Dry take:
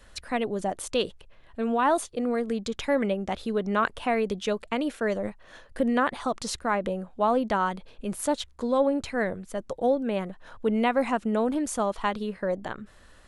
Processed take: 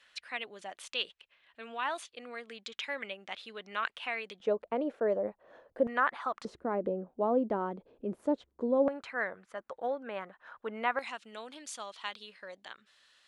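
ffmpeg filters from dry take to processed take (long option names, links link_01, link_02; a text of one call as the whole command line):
ffmpeg -i in.wav -af "asetnsamples=nb_out_samples=441:pad=0,asendcmd='4.4 bandpass f 540;5.87 bandpass f 1400;6.45 bandpass f 370;8.88 bandpass f 1400;10.99 bandpass f 3700',bandpass=frequency=2700:width_type=q:width=1.4:csg=0" out.wav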